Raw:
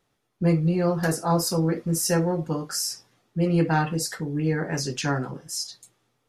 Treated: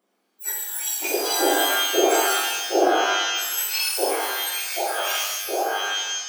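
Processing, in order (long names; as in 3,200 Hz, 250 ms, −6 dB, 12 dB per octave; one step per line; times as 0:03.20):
frequency axis turned over on the octave scale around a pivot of 2,000 Hz
0:02.45–0:02.88: RIAA equalisation playback
reverb with rising layers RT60 1.1 s, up +12 semitones, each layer −2 dB, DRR −2 dB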